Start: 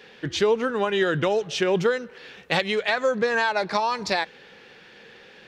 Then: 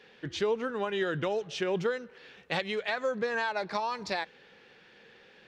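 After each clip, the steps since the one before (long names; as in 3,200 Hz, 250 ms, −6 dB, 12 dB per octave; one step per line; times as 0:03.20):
high-shelf EQ 8,000 Hz −6.5 dB
level −8 dB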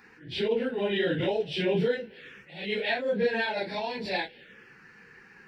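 random phases in long frames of 100 ms
phaser swept by the level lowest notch 540 Hz, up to 1,200 Hz, full sweep at −36 dBFS
level that may rise only so fast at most 110 dB per second
level +7 dB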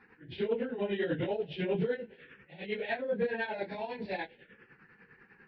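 shaped tremolo triangle 10 Hz, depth 75%
soft clipping −18 dBFS, distortion −25 dB
high-frequency loss of the air 360 metres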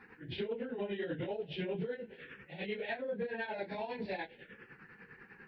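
downward compressor 4 to 1, threshold −40 dBFS, peak gain reduction 12.5 dB
level +3.5 dB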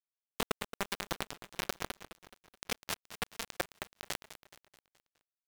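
bit reduction 5 bits
repeating echo 212 ms, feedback 47%, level −13 dB
wow of a warped record 78 rpm, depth 250 cents
level +5 dB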